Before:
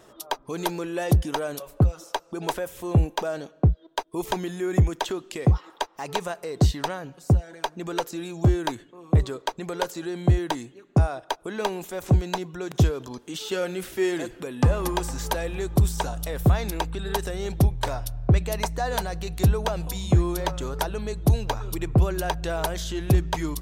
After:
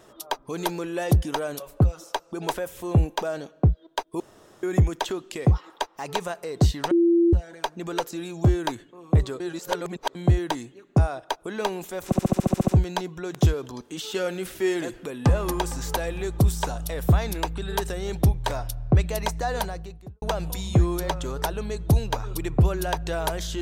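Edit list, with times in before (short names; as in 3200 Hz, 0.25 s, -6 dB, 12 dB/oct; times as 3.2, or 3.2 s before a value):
4.2–4.63 room tone
6.91–7.33 bleep 340 Hz -15 dBFS
9.4–10.15 reverse
12.05 stutter 0.07 s, 10 plays
18.87–19.59 studio fade out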